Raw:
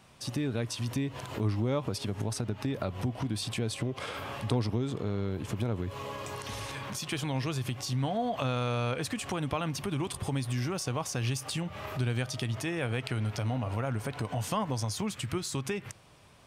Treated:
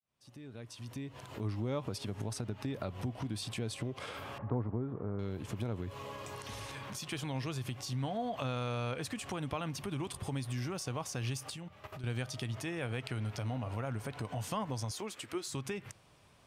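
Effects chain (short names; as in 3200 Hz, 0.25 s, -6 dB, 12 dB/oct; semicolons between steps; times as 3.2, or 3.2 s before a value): opening faded in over 1.79 s; 4.38–5.19 LPF 1500 Hz 24 dB/oct; 11.5–12.04 level quantiser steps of 13 dB; 14.91–15.48 resonant low shelf 220 Hz -13.5 dB, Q 1.5; gain -5.5 dB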